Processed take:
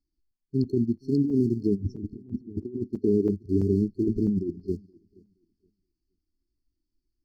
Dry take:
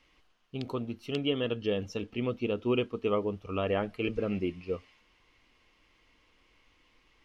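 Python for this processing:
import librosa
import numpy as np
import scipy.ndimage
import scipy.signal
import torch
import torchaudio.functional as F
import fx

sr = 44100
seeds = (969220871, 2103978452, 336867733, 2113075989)

p1 = fx.tilt_shelf(x, sr, db=9.5, hz=1200.0, at=(1.75, 2.63), fade=0.02)
p2 = np.where(np.abs(p1) >= 10.0 ** (-34.5 / 20.0), p1, 0.0)
p3 = p1 + F.gain(torch.from_numpy(p2), -3.5).numpy()
p4 = fx.brickwall_bandstop(p3, sr, low_hz=420.0, high_hz=4200.0)
p5 = fx.over_compress(p4, sr, threshold_db=-29.0, ratio=-0.5)
p6 = fx.peak_eq(p5, sr, hz=2000.0, db=13.0, octaves=1.3)
p7 = p6 + fx.echo_feedback(p6, sr, ms=473, feedback_pct=35, wet_db=-18.0, dry=0)
p8 = fx.buffer_crackle(p7, sr, first_s=0.31, period_s=0.33, block=256, kind='zero')
p9 = fx.spectral_expand(p8, sr, expansion=1.5)
y = F.gain(torch.from_numpy(p9), 4.5).numpy()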